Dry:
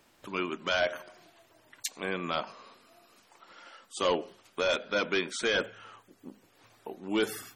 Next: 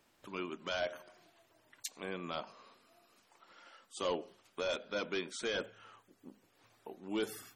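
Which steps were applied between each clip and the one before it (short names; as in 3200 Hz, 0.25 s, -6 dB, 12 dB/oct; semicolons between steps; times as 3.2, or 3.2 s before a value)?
dynamic EQ 1800 Hz, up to -4 dB, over -43 dBFS, Q 1; gain -7 dB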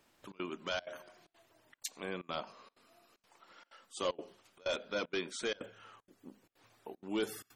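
step gate "xxxx.xxxxx.x" 190 bpm -24 dB; gain +1 dB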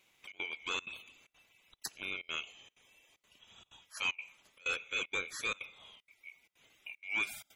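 band-swap scrambler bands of 2000 Hz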